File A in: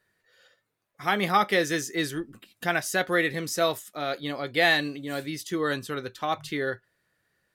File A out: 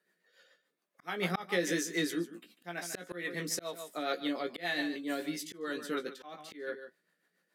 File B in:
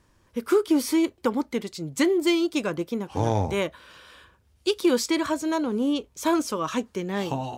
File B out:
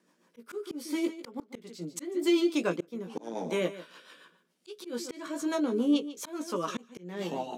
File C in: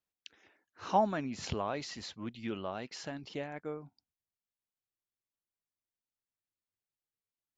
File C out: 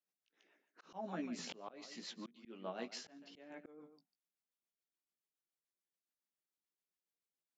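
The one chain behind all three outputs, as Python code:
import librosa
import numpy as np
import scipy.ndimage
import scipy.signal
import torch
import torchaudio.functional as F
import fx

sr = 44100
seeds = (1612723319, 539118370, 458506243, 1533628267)

p1 = scipy.signal.sosfilt(scipy.signal.ellip(4, 1.0, 40, 170.0, 'highpass', fs=sr, output='sos'), x)
p2 = fx.doubler(p1, sr, ms=17.0, db=-6)
p3 = p2 + fx.echo_single(p2, sr, ms=146, db=-15.0, dry=0)
p4 = fx.rotary(p3, sr, hz=7.0)
p5 = fx.auto_swell(p4, sr, attack_ms=359.0)
y = p5 * 10.0 ** (-1.5 / 20.0)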